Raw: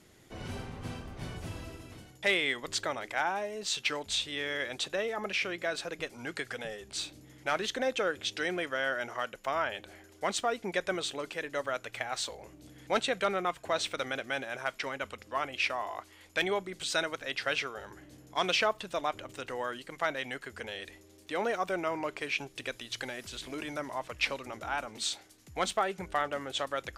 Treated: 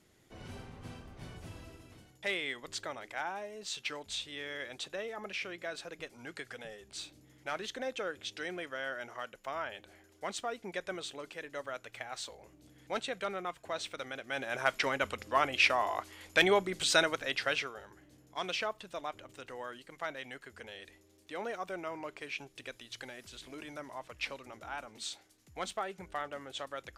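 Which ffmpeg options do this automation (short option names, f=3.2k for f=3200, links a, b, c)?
-af "volume=4.5dB,afade=t=in:st=14.25:d=0.43:silence=0.266073,afade=t=out:st=16.92:d=0.96:silence=0.251189"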